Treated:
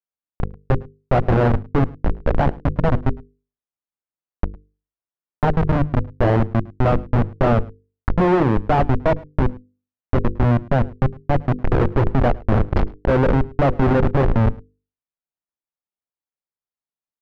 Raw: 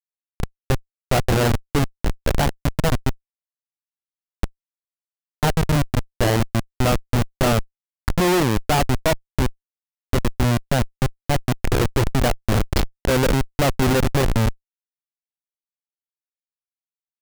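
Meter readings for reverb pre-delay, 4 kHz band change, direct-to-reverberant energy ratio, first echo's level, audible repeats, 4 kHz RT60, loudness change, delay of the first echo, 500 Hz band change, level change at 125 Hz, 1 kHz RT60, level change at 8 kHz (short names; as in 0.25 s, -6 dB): none, -13.0 dB, none, -23.5 dB, 1, none, +1.5 dB, 0.107 s, +2.5 dB, +2.5 dB, none, under -25 dB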